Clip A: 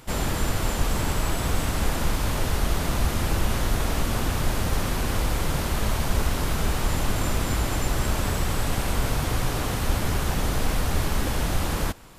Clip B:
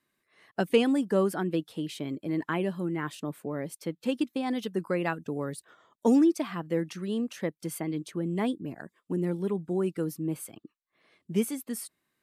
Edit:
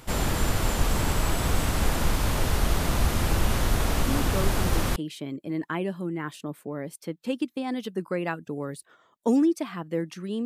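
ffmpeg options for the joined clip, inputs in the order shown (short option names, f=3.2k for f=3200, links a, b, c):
-filter_complex "[1:a]asplit=2[a][b];[0:a]apad=whole_dur=10.45,atrim=end=10.45,atrim=end=4.962[c];[b]atrim=start=1.748:end=7.24[d];[a]atrim=start=0.87:end=1.75,asetpts=PTS-STARTPTS,volume=-6dB,afade=t=in:d=0.004:c=hsin,afade=t=out:st=0.876:d=0.004:c=hsin,adelay=4080[e];[c][d]acrossfade=d=0.004:c1=hsin:c2=hsin[f];[f][e]amix=inputs=2:normalize=0"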